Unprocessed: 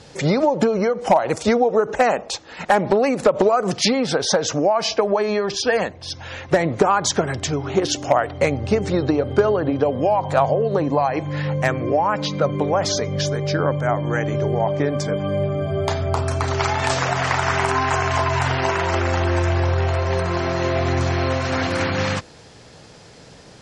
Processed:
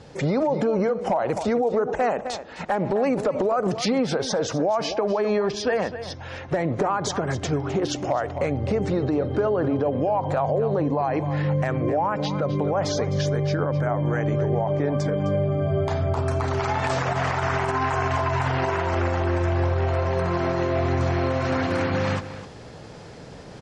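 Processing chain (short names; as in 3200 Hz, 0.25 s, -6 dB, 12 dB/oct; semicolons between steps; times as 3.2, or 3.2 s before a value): reverse; upward compressor, threshold -33 dBFS; reverse; high shelf 2300 Hz -10 dB; echo 0.258 s -14.5 dB; limiter -14.5 dBFS, peak gain reduction 9 dB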